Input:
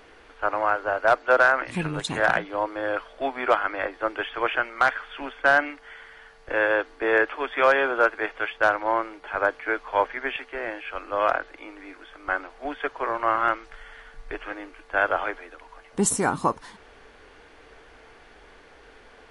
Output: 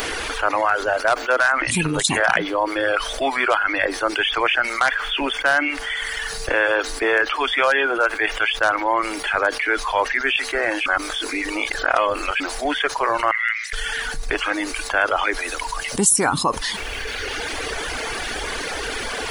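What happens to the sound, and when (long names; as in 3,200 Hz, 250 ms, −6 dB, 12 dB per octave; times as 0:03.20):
0:10.86–0:12.40: reverse
0:13.31–0:13.73: four-pole ladder high-pass 1,900 Hz, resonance 85%
whole clip: reverb reduction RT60 1.4 s; first-order pre-emphasis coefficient 0.8; envelope flattener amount 70%; level +7 dB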